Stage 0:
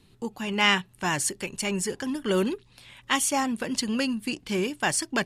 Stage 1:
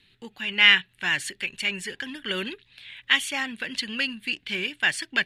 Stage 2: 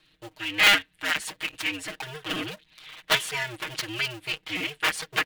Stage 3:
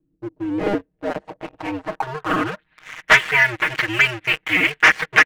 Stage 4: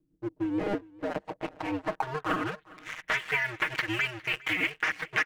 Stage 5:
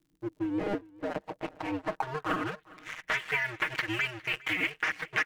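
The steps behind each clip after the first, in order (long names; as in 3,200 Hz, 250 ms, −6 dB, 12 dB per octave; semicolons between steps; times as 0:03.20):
flat-topped bell 2,500 Hz +16 dB; level −9 dB
sub-harmonics by changed cycles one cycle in 2, inverted; comb filter 6.4 ms, depth 95%; level −4.5 dB
low-pass filter sweep 290 Hz → 2,000 Hz, 0:00.12–0:03.03; leveller curve on the samples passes 2; level +2.5 dB
downward compressor 4 to 1, threshold −23 dBFS, peak gain reduction 13 dB; amplitude tremolo 6.9 Hz, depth 41%; single-tap delay 407 ms −22.5 dB; level −2 dB
surface crackle 70 per second −56 dBFS; level −1.5 dB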